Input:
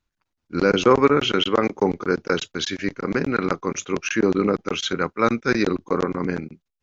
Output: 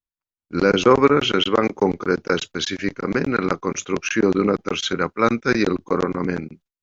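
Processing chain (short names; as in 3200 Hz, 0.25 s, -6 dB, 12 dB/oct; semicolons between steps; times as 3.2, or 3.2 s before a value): gate with hold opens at -45 dBFS; gain +1.5 dB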